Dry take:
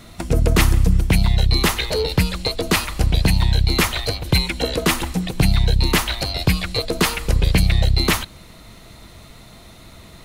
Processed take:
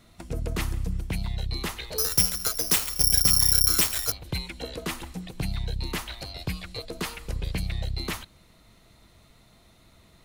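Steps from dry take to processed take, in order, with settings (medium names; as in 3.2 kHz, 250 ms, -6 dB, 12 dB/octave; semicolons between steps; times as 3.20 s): 1.98–4.12 s: careless resampling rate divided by 8×, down none, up zero stuff; trim -14 dB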